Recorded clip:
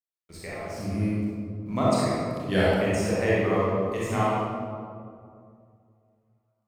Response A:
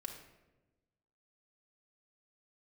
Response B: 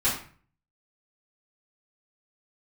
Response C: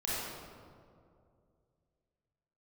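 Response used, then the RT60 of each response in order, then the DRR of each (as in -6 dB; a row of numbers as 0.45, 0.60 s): C; 1.1, 0.45, 2.4 s; 0.5, -11.5, -8.0 dB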